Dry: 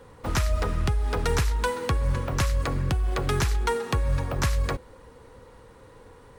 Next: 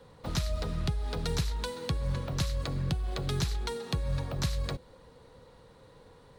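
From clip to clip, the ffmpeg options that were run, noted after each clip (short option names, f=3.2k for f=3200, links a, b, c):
-filter_complex "[0:a]equalizer=f=160:t=o:w=0.67:g=8,equalizer=f=630:t=o:w=0.67:g=5,equalizer=f=4k:t=o:w=0.67:g=10,acrossover=split=410|3000[a][b][c];[b]acompressor=threshold=-33dB:ratio=3[d];[a][d][c]amix=inputs=3:normalize=0,volume=-8dB"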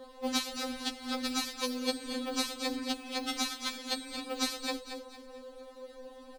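-af "aecho=1:1:228|456|684|912:0.355|0.131|0.0486|0.018,afftfilt=real='re*3.46*eq(mod(b,12),0)':imag='im*3.46*eq(mod(b,12),0)':win_size=2048:overlap=0.75,volume=7.5dB"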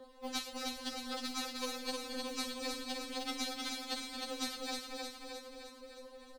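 -filter_complex "[0:a]acrossover=split=330[a][b];[a]aeval=exprs='clip(val(0),-1,0.00501)':c=same[c];[c][b]amix=inputs=2:normalize=0,aphaser=in_gain=1:out_gain=1:delay=4:decay=0.23:speed=0.46:type=triangular,aecho=1:1:309|618|927|1236|1545|1854|2163|2472:0.668|0.388|0.225|0.13|0.0756|0.0439|0.0254|0.0148,volume=-7dB"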